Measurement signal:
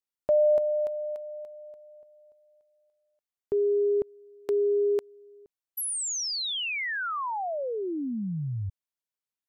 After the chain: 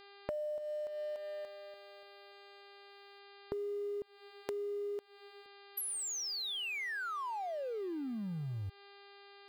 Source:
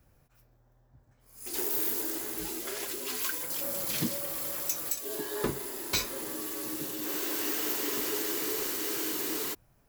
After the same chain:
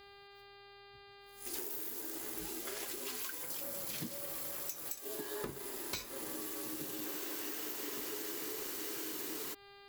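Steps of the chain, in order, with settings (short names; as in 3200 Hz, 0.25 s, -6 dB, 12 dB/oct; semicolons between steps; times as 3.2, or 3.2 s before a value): G.711 law mismatch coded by A; buzz 400 Hz, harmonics 12, -57 dBFS -3 dB/oct; compressor 12:1, threshold -37 dBFS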